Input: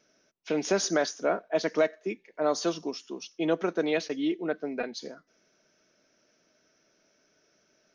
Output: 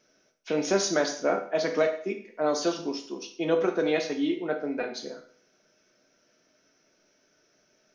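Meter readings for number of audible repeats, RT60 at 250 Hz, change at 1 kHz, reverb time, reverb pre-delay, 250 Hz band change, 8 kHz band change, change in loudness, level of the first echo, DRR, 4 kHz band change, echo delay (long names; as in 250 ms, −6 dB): no echo audible, 0.50 s, +1.5 dB, 0.50 s, 8 ms, +1.0 dB, +1.0 dB, +1.5 dB, no echo audible, 3.5 dB, +1.5 dB, no echo audible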